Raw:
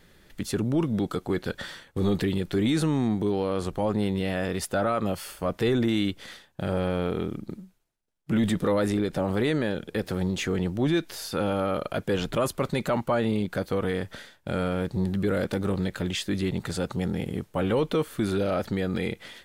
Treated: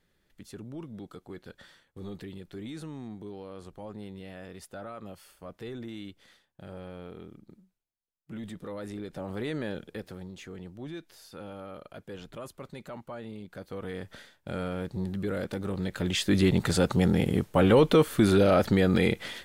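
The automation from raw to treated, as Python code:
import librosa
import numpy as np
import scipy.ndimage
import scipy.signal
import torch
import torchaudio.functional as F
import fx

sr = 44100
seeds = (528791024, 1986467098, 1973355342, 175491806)

y = fx.gain(x, sr, db=fx.line((8.62, -16.0), (9.76, -6.0), (10.27, -16.0), (13.41, -16.0), (14.18, -6.0), (15.71, -6.0), (16.38, 5.0)))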